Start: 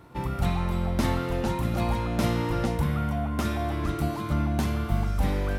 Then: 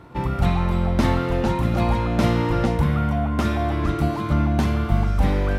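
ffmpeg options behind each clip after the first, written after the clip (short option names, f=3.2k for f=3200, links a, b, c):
-af "highshelf=f=6.8k:g=-11.5,volume=6dB"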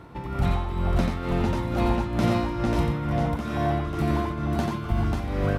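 -filter_complex "[0:a]acompressor=threshold=-21dB:ratio=2.5,tremolo=f=2.2:d=0.67,asplit=2[a][b];[b]aecho=0:1:89|252|541:0.596|0.106|0.668[c];[a][c]amix=inputs=2:normalize=0"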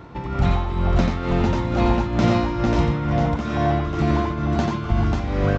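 -af "aresample=16000,aresample=44100,volume=4.5dB"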